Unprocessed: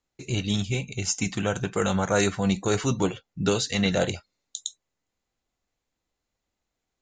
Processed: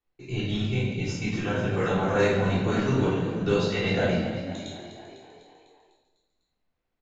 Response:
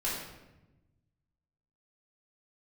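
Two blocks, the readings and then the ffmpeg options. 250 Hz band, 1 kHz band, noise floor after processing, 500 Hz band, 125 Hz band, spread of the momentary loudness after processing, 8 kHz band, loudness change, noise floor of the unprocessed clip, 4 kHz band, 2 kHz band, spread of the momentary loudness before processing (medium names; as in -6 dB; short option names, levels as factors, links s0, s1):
0.0 dB, +0.5 dB, -80 dBFS, +1.5 dB, +1.5 dB, 12 LU, -14.5 dB, 0.0 dB, -84 dBFS, -4.5 dB, +1.0 dB, 12 LU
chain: -filter_complex "[0:a]lowpass=3400,asplit=8[s0][s1][s2][s3][s4][s5][s6][s7];[s1]adelay=250,afreqshift=38,volume=0.266[s8];[s2]adelay=500,afreqshift=76,volume=0.162[s9];[s3]adelay=750,afreqshift=114,volume=0.0989[s10];[s4]adelay=1000,afreqshift=152,volume=0.0603[s11];[s5]adelay=1250,afreqshift=190,volume=0.0367[s12];[s6]adelay=1500,afreqshift=228,volume=0.0224[s13];[s7]adelay=1750,afreqshift=266,volume=0.0136[s14];[s0][s8][s9][s10][s11][s12][s13][s14]amix=inputs=8:normalize=0[s15];[1:a]atrim=start_sample=2205[s16];[s15][s16]afir=irnorm=-1:irlink=0,volume=0.501"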